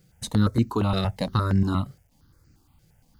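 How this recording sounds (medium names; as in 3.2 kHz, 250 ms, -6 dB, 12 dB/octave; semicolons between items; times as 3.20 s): a quantiser's noise floor 12-bit, dither none; notches that jump at a steady rate 8.6 Hz 260–3400 Hz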